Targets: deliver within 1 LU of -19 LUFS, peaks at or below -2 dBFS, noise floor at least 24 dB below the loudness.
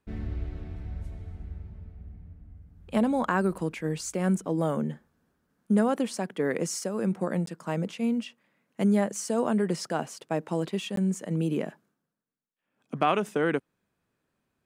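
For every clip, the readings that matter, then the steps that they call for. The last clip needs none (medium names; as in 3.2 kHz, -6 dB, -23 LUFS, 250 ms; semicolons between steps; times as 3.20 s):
dropouts 2; longest dropout 13 ms; loudness -29.0 LUFS; peak level -10.5 dBFS; loudness target -19.0 LUFS
-> interpolate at 7.46/10.96 s, 13 ms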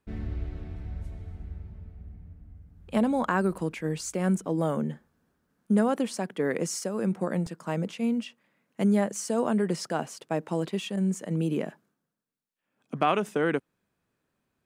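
dropouts 0; loudness -29.0 LUFS; peak level -10.5 dBFS; loudness target -19.0 LUFS
-> trim +10 dB; peak limiter -2 dBFS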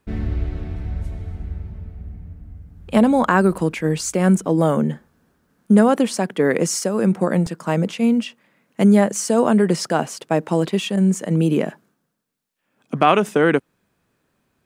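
loudness -19.0 LUFS; peak level -2.0 dBFS; noise floor -70 dBFS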